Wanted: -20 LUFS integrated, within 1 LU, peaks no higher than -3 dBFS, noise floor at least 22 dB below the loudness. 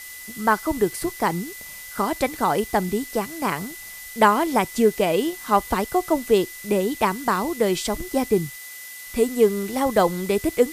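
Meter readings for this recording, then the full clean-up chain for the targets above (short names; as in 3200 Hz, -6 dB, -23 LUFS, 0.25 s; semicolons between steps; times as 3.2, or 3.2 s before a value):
steady tone 2000 Hz; tone level -40 dBFS; noise floor -39 dBFS; noise floor target -45 dBFS; loudness -22.5 LUFS; peak -4.0 dBFS; loudness target -20.0 LUFS
-> notch 2000 Hz, Q 30; noise print and reduce 6 dB; gain +2.5 dB; limiter -3 dBFS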